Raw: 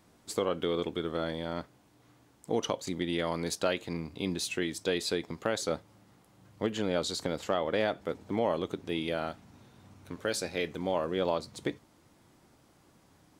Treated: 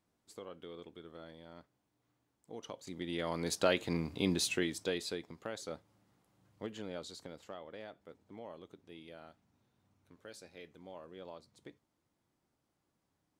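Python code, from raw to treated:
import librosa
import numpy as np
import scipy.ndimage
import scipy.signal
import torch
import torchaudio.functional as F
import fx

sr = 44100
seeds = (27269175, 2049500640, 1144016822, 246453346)

y = fx.gain(x, sr, db=fx.line((2.51, -18.0), (3.08, -7.5), (3.77, 1.0), (4.42, 1.0), (5.34, -11.5), (6.7, -11.5), (7.79, -19.5)))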